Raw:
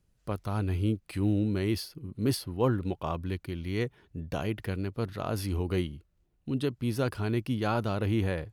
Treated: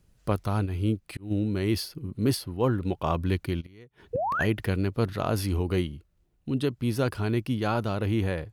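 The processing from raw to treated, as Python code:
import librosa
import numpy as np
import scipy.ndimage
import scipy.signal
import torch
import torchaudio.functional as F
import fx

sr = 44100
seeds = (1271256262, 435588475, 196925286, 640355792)

y = fx.rider(x, sr, range_db=5, speed_s=0.5)
y = fx.gate_flip(y, sr, shuts_db=-24.0, range_db=-26, at=(3.6, 4.39), fade=0.02)
y = fx.spec_paint(y, sr, seeds[0], shape='rise', start_s=4.13, length_s=0.32, low_hz=450.0, high_hz=2000.0, level_db=-31.0)
y = fx.auto_swell(y, sr, attack_ms=424.0, at=(0.65, 1.3), fade=0.02)
y = F.gain(torch.from_numpy(y), 3.5).numpy()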